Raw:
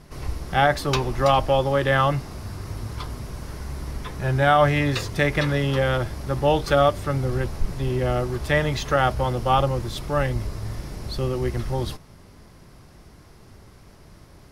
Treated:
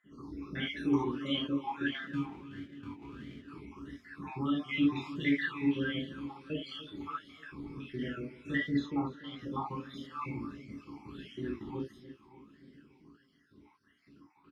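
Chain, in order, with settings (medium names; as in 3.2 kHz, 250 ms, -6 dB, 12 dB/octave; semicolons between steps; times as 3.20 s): random holes in the spectrogram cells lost 70%; in parallel at +1.5 dB: peak limiter -20 dBFS, peak gain reduction 11.5 dB; 2.02–3.48 s: on the sum: sample-rate reducer 1.1 kHz, jitter 0%; 8.82–9.39 s: distance through air 71 m; on a send: feedback delay 292 ms, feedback 54%, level -15 dB; on the sum: gated-style reverb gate 100 ms flat, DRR -4.5 dB; talking filter i-u 1.5 Hz; trim -5 dB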